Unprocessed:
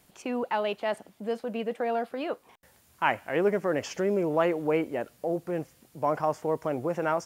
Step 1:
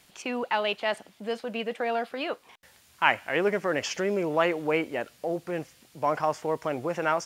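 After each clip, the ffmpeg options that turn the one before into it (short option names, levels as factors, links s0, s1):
-af "equalizer=f=3400:w=0.39:g=10,volume=0.794"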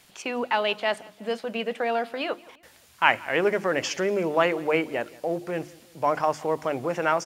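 -filter_complex "[0:a]bandreject=f=50:t=h:w=6,bandreject=f=100:t=h:w=6,bandreject=f=150:t=h:w=6,bandreject=f=200:t=h:w=6,bandreject=f=250:t=h:w=6,bandreject=f=300:t=h:w=6,bandreject=f=350:t=h:w=6,asplit=2[s0][s1];[s1]adelay=175,lowpass=f=4700:p=1,volume=0.075,asplit=2[s2][s3];[s3]adelay=175,lowpass=f=4700:p=1,volume=0.45,asplit=2[s4][s5];[s5]adelay=175,lowpass=f=4700:p=1,volume=0.45[s6];[s0][s2][s4][s6]amix=inputs=4:normalize=0,volume=1.33"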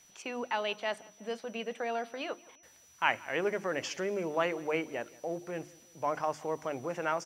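-af "aeval=exprs='val(0)+0.00282*sin(2*PI*5900*n/s)':c=same,volume=0.376"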